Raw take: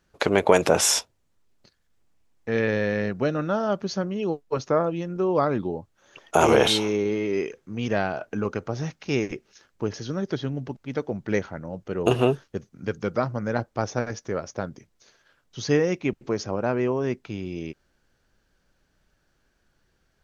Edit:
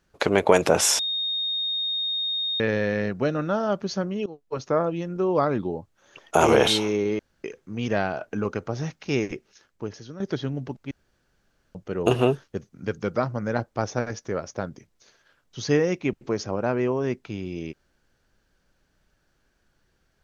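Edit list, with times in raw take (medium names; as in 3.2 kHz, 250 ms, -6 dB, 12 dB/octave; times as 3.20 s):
0.99–2.60 s: bleep 3.7 kHz -24 dBFS
4.26–4.97 s: fade in equal-power, from -19.5 dB
7.19–7.44 s: room tone
9.34–10.20 s: fade out, to -12 dB
10.91–11.75 s: room tone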